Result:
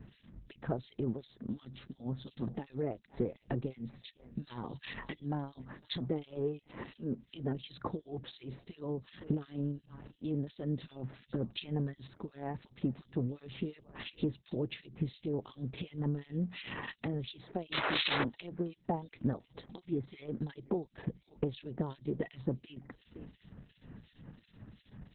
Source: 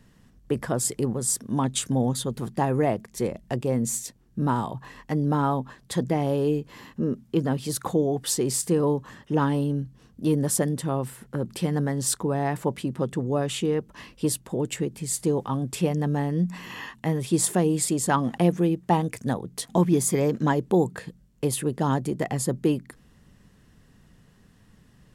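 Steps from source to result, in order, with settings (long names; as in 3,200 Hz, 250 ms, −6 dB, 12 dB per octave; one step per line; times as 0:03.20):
gain on a spectral selection 0:04.05–0:05.43, 1,600–11,000 Hz +9 dB
feedback echo with a high-pass in the loop 508 ms, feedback 24%, high-pass 1,100 Hz, level −23.5 dB
dynamic equaliser 180 Hz, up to −5 dB, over −41 dBFS, Q 4.8
high-pass filter 42 Hz 6 dB per octave
downward compressor 12 to 1, threshold −35 dBFS, peak gain reduction 19 dB
parametric band 1,200 Hz −7 dB 2.4 octaves
sound drawn into the spectrogram noise, 0:17.72–0:18.24, 280–5,300 Hz −35 dBFS
two-band tremolo in antiphase 2.8 Hz, depth 100%, crossover 2,000 Hz
level +8.5 dB
Opus 6 kbit/s 48,000 Hz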